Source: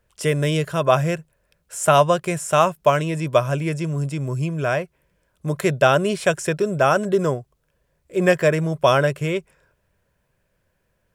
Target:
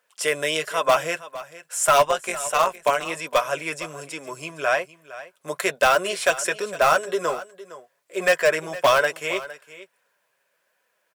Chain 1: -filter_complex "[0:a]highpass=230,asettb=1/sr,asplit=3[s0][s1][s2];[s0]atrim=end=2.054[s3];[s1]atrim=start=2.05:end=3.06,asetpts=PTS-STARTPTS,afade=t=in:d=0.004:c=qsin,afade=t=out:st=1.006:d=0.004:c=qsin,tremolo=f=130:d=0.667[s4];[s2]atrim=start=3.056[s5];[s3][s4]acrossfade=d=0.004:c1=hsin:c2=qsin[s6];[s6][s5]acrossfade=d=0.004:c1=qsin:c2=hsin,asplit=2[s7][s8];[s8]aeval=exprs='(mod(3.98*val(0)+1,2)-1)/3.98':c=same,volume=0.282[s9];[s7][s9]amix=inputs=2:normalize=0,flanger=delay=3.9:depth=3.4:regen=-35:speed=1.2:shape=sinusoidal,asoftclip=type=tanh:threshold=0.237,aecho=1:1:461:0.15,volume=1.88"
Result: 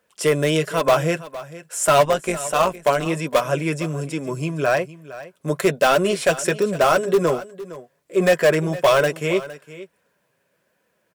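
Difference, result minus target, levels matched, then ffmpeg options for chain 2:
250 Hz band +10.0 dB
-filter_complex "[0:a]highpass=700,asettb=1/sr,asplit=3[s0][s1][s2];[s0]atrim=end=2.054[s3];[s1]atrim=start=2.05:end=3.06,asetpts=PTS-STARTPTS,afade=t=in:d=0.004:c=qsin,afade=t=out:st=1.006:d=0.004:c=qsin,tremolo=f=130:d=0.667[s4];[s2]atrim=start=3.056[s5];[s3][s4]acrossfade=d=0.004:c1=hsin:c2=qsin[s6];[s6][s5]acrossfade=d=0.004:c1=qsin:c2=hsin,asplit=2[s7][s8];[s8]aeval=exprs='(mod(3.98*val(0)+1,2)-1)/3.98':c=same,volume=0.282[s9];[s7][s9]amix=inputs=2:normalize=0,flanger=delay=3.9:depth=3.4:regen=-35:speed=1.2:shape=sinusoidal,asoftclip=type=tanh:threshold=0.237,aecho=1:1:461:0.15,volume=1.88"

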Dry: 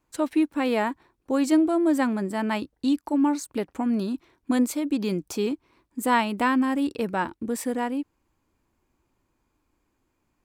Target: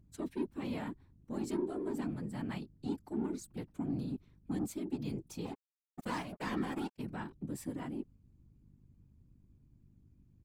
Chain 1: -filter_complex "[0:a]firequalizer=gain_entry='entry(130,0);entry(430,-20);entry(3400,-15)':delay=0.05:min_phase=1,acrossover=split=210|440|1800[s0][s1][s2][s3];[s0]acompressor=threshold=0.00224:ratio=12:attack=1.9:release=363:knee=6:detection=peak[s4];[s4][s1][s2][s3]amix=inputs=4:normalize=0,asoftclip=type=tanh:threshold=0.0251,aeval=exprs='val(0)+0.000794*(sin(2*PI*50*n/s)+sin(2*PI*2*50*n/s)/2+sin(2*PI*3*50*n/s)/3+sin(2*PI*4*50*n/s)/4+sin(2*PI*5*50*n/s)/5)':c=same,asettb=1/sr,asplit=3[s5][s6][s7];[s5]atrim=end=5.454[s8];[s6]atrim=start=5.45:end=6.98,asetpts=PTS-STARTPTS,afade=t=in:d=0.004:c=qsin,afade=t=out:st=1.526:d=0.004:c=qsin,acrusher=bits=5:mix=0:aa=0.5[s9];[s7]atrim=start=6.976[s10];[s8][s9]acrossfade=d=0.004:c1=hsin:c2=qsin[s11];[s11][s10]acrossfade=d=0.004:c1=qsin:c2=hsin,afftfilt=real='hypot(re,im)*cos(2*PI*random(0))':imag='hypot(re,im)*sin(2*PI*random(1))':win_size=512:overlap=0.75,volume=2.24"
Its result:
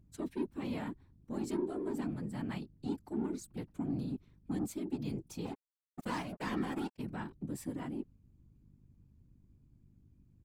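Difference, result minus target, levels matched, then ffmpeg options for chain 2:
compression: peak gain reduction -6 dB
-filter_complex "[0:a]firequalizer=gain_entry='entry(130,0);entry(430,-20);entry(3400,-15)':delay=0.05:min_phase=1,acrossover=split=210|440|1800[s0][s1][s2][s3];[s0]acompressor=threshold=0.00106:ratio=12:attack=1.9:release=363:knee=6:detection=peak[s4];[s4][s1][s2][s3]amix=inputs=4:normalize=0,asoftclip=type=tanh:threshold=0.0251,aeval=exprs='val(0)+0.000794*(sin(2*PI*50*n/s)+sin(2*PI*2*50*n/s)/2+sin(2*PI*3*50*n/s)/3+sin(2*PI*4*50*n/s)/4+sin(2*PI*5*50*n/s)/5)':c=same,asettb=1/sr,asplit=3[s5][s6][s7];[s5]atrim=end=5.454[s8];[s6]atrim=start=5.45:end=6.98,asetpts=PTS-STARTPTS,afade=t=in:d=0.004:c=qsin,afade=t=out:st=1.526:d=0.004:c=qsin,acrusher=bits=5:mix=0:aa=0.5[s9];[s7]atrim=start=6.976[s10];[s8][s9]acrossfade=d=0.004:c1=hsin:c2=qsin[s11];[s11][s10]acrossfade=d=0.004:c1=qsin:c2=hsin,afftfilt=real='hypot(re,im)*cos(2*PI*random(0))':imag='hypot(re,im)*sin(2*PI*random(1))':win_size=512:overlap=0.75,volume=2.24"

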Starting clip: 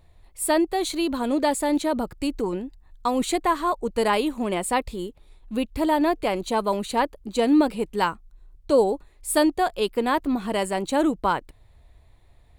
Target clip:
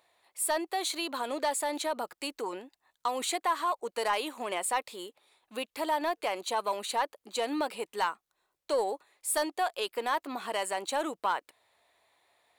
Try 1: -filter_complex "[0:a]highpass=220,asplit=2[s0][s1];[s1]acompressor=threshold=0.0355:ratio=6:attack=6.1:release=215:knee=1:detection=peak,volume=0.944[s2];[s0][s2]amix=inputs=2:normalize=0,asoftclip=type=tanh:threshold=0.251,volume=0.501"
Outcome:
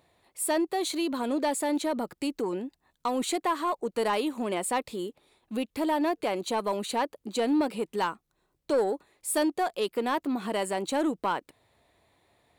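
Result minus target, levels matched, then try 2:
250 Hz band +8.0 dB
-filter_complex "[0:a]highpass=670,asplit=2[s0][s1];[s1]acompressor=threshold=0.0355:ratio=6:attack=6.1:release=215:knee=1:detection=peak,volume=0.944[s2];[s0][s2]amix=inputs=2:normalize=0,asoftclip=type=tanh:threshold=0.251,volume=0.501"

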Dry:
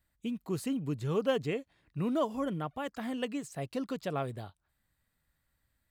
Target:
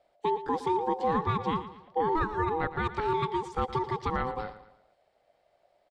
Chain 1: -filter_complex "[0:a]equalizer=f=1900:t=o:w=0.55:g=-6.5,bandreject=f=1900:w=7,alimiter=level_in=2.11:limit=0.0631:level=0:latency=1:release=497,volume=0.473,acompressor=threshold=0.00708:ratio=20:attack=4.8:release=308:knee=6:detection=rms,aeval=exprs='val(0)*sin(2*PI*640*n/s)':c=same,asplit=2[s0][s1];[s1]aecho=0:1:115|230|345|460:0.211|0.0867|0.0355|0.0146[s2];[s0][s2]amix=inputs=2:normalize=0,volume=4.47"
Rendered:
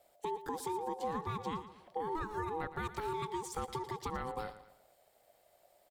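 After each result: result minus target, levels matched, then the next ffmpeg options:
compression: peak gain reduction +11 dB; 4 kHz band +3.0 dB
-filter_complex "[0:a]equalizer=f=1900:t=o:w=0.55:g=-6.5,bandreject=f=1900:w=7,alimiter=level_in=2.11:limit=0.0631:level=0:latency=1:release=497,volume=0.473,aeval=exprs='val(0)*sin(2*PI*640*n/s)':c=same,asplit=2[s0][s1];[s1]aecho=0:1:115|230|345|460:0.211|0.0867|0.0355|0.0146[s2];[s0][s2]amix=inputs=2:normalize=0,volume=4.47"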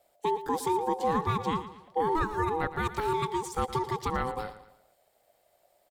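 4 kHz band +2.0 dB
-filter_complex "[0:a]lowpass=3500,equalizer=f=1900:t=o:w=0.55:g=-6.5,bandreject=f=1900:w=7,alimiter=level_in=2.11:limit=0.0631:level=0:latency=1:release=497,volume=0.473,aeval=exprs='val(0)*sin(2*PI*640*n/s)':c=same,asplit=2[s0][s1];[s1]aecho=0:1:115|230|345|460:0.211|0.0867|0.0355|0.0146[s2];[s0][s2]amix=inputs=2:normalize=0,volume=4.47"

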